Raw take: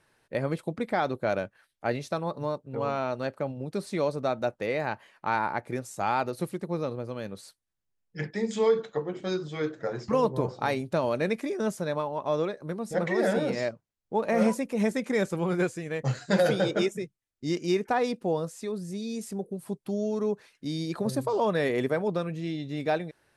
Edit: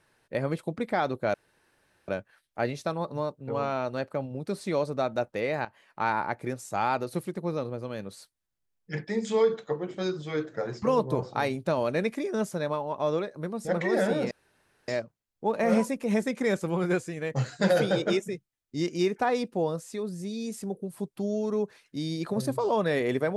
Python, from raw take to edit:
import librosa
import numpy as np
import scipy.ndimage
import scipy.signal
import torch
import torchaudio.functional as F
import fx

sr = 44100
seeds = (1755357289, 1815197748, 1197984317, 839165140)

y = fx.edit(x, sr, fx.insert_room_tone(at_s=1.34, length_s=0.74),
    fx.fade_in_from(start_s=4.91, length_s=0.4, curve='qsin', floor_db=-14.5),
    fx.insert_room_tone(at_s=13.57, length_s=0.57), tone=tone)